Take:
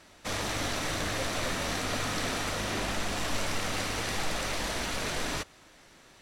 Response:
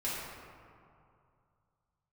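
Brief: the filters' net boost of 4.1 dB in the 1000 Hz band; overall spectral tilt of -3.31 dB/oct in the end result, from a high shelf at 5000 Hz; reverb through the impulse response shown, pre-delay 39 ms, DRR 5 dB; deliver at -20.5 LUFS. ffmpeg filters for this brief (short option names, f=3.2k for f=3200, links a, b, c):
-filter_complex "[0:a]equalizer=f=1k:t=o:g=5,highshelf=f=5k:g=7,asplit=2[a][b];[1:a]atrim=start_sample=2205,adelay=39[c];[b][c]afir=irnorm=-1:irlink=0,volume=-10.5dB[d];[a][d]amix=inputs=2:normalize=0,volume=7.5dB"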